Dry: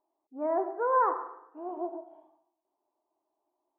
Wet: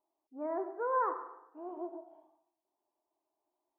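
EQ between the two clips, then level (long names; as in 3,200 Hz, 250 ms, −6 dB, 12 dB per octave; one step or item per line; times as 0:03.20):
dynamic equaliser 760 Hz, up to −6 dB, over −42 dBFS, Q 2.7
−4.5 dB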